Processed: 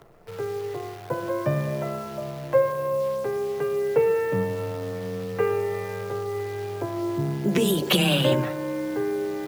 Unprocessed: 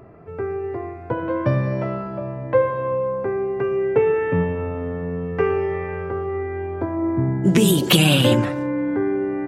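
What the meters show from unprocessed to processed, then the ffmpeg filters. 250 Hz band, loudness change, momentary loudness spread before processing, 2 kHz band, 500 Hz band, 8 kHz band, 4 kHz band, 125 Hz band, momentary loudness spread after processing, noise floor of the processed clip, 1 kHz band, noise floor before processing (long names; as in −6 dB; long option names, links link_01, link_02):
−7.0 dB, −4.5 dB, 12 LU, −4.5 dB, −3.0 dB, −7.0 dB, −4.5 dB, −7.0 dB, 11 LU, −37 dBFS, −4.0 dB, −34 dBFS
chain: -af "acrusher=bits=7:dc=4:mix=0:aa=0.000001,afreqshift=16,equalizer=frequency=250:width_type=o:width=1:gain=-5,equalizer=frequency=500:width_type=o:width=1:gain=3,equalizer=frequency=8000:width_type=o:width=1:gain=-4,volume=-4.5dB"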